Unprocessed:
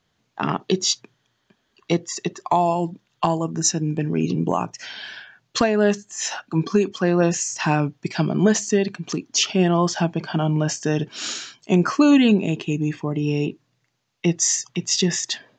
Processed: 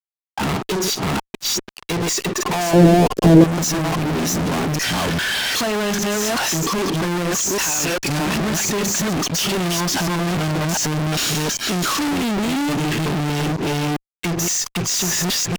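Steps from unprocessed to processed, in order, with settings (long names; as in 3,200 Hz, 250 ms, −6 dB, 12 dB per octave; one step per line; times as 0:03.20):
delay that plays each chunk backwards 399 ms, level −1 dB
0:07.61–0:08.10: spectral tilt +4 dB per octave
downward compressor 12 to 1, threshold −17 dBFS, peak gain reduction 9.5 dB
fuzz pedal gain 47 dB, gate −50 dBFS
0:02.73–0:03.44: low shelf with overshoot 650 Hz +13 dB, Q 1.5
level −6.5 dB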